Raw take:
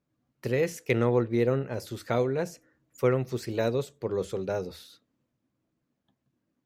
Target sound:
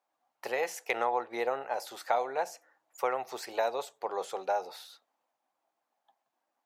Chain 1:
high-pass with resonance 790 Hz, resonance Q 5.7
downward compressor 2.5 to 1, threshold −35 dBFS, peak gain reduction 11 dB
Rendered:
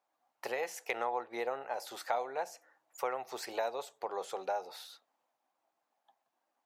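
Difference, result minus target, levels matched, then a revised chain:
downward compressor: peak gain reduction +5 dB
high-pass with resonance 790 Hz, resonance Q 5.7
downward compressor 2.5 to 1, threshold −26.5 dBFS, peak gain reduction 6 dB

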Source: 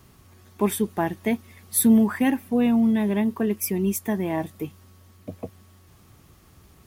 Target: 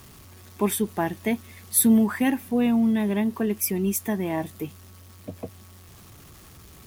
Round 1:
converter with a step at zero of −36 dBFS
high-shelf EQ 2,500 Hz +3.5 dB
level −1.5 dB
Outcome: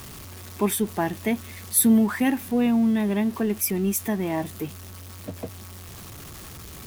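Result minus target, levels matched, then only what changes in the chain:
converter with a step at zero: distortion +10 dB
change: converter with a step at zero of −46.5 dBFS

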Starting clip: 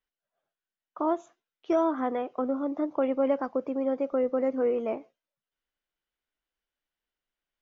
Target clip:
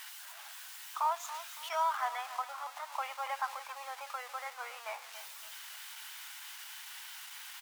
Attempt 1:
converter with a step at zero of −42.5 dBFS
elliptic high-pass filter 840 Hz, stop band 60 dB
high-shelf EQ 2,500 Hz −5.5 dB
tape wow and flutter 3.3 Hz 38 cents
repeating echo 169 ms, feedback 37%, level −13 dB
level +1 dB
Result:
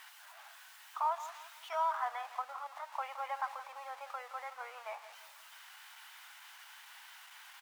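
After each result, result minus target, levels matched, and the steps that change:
echo 111 ms early; 4,000 Hz band −7.0 dB
change: repeating echo 280 ms, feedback 37%, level −13 dB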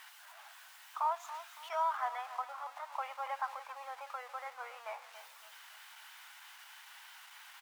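4,000 Hz band −7.0 dB
change: high-shelf EQ 2,500 Hz +6 dB

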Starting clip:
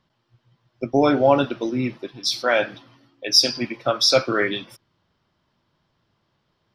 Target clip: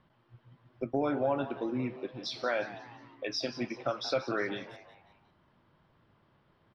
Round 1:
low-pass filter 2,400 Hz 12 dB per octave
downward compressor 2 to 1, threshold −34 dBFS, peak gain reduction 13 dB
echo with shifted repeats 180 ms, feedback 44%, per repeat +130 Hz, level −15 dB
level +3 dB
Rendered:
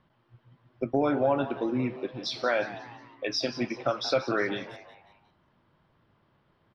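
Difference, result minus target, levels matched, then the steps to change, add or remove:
downward compressor: peak gain reduction −5 dB
change: downward compressor 2 to 1, threshold −43.5 dBFS, peak gain reduction 17.5 dB

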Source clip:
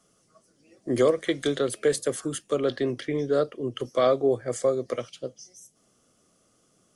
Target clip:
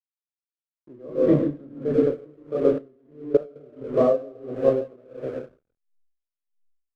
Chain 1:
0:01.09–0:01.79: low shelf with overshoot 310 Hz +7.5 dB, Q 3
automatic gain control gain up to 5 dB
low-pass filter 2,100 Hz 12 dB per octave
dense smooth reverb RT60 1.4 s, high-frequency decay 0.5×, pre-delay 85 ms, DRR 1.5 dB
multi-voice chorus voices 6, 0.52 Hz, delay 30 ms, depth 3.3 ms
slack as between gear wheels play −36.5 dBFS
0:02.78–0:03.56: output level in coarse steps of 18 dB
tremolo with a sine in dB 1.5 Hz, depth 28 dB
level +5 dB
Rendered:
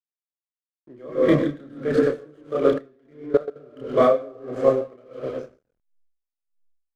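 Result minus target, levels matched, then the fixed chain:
2,000 Hz band +10.0 dB
0:01.09–0:01.79: low shelf with overshoot 310 Hz +7.5 dB, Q 3
automatic gain control gain up to 5 dB
low-pass filter 660 Hz 12 dB per octave
dense smooth reverb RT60 1.4 s, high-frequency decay 0.5×, pre-delay 85 ms, DRR 1.5 dB
multi-voice chorus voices 6, 0.52 Hz, delay 30 ms, depth 3.3 ms
slack as between gear wheels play −36.5 dBFS
0:02.78–0:03.56: output level in coarse steps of 18 dB
tremolo with a sine in dB 1.5 Hz, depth 28 dB
level +5 dB

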